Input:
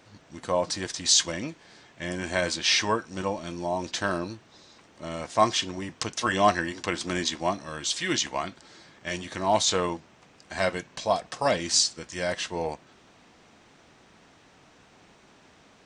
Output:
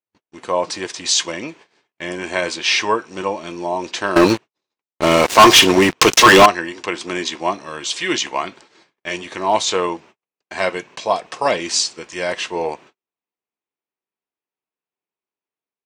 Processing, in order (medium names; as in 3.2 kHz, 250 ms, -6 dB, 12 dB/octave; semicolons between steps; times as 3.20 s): high-pass 190 Hz 6 dB/octave; gate -49 dBFS, range -46 dB; fifteen-band graphic EQ 400 Hz +8 dB, 1 kHz +6 dB, 2.5 kHz +7 dB; level rider gain up to 3.5 dB; 4.16–6.46 s: waveshaping leveller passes 5